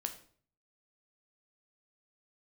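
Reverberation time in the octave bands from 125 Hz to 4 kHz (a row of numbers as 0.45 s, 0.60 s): 0.70 s, 0.60 s, 0.55 s, 0.45 s, 0.40 s, 0.40 s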